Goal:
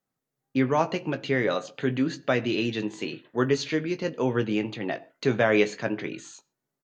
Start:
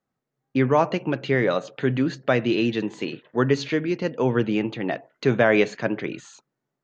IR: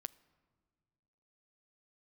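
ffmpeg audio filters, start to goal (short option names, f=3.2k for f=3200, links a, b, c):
-filter_complex "[0:a]aemphasis=mode=production:type=cd,asplit=2[a][b];[b]adelay=19,volume=-10dB[c];[a][c]amix=inputs=2:normalize=0[d];[1:a]atrim=start_sample=2205,atrim=end_sample=6615[e];[d][e]afir=irnorm=-1:irlink=0"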